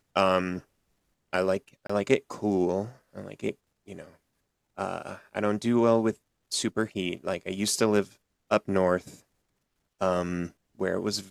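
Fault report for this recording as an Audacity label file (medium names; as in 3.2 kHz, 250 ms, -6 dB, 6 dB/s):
1.870000	1.900000	dropout 25 ms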